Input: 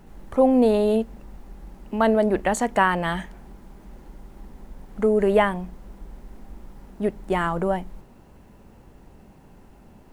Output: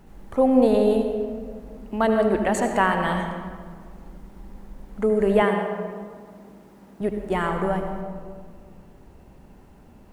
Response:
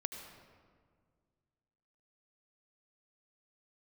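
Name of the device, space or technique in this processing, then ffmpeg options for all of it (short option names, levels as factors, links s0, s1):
stairwell: -filter_complex "[1:a]atrim=start_sample=2205[s0];[0:a][s0]afir=irnorm=-1:irlink=0,asettb=1/sr,asplit=3[s1][s2][s3];[s1]atrim=end=5.424[s4];[s2]atrim=start=5.42:end=7.01,asetpts=PTS-STARTPTS,afade=t=in:d=0.004:c=qsin,afade=t=out:st=1.586:d=0.004:c=qsin,highpass=150[s5];[s3]atrim=start=7.006[s6];[s4][s5]acrossfade=d=0.004:c1=hsin:c2=qsin[s7];[s7][s6]acrossfade=d=0.004:c1=qsin:c2=hsin"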